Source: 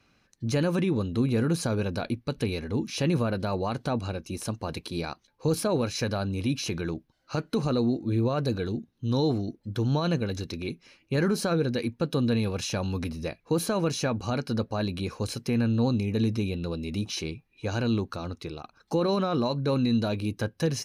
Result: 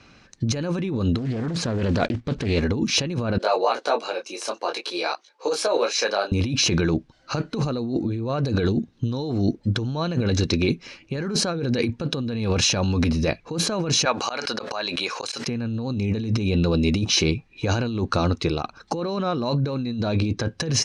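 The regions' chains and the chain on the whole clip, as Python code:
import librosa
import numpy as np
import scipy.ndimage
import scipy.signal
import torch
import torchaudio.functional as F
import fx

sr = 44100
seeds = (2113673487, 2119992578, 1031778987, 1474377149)

y = fx.chain(x, sr, fx.block_float(bits=5),
    fx.lowpass(hz=3000.0, slope=6),
    fx.doppler_dist(depth_ms=0.47), at=(1.18, 2.62))
y = fx.chain(y, sr, fx.highpass(hz=420.0, slope=24),
    fx.detune_double(cents=19), at=(3.38, 6.32))
y = fx.chain(y, sr, fx.highpass(hz=760.0, slope=12),
    fx.auto_swell(attack_ms=184.0),
    fx.pre_swell(db_per_s=40.0), at=(14.05, 15.47))
y = fx.chain(y, sr, fx.lowpass(hz=6700.0, slope=12),
    fx.notch(hz=2900.0, q=12.0), at=(19.75, 20.45))
y = scipy.signal.sosfilt(scipy.signal.butter(4, 7600.0, 'lowpass', fs=sr, output='sos'), y)
y = fx.over_compress(y, sr, threshold_db=-32.0, ratio=-1.0)
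y = y * librosa.db_to_amplitude(9.0)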